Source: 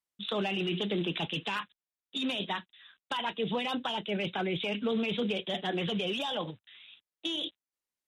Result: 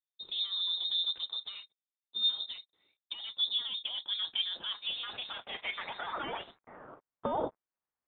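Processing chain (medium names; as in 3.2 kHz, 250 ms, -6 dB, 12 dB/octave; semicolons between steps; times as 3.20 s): partial rectifier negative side -7 dB; band-pass sweep 270 Hz -> 3 kHz, 2.90–6.77 s; frequency inversion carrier 3.9 kHz; trim +7.5 dB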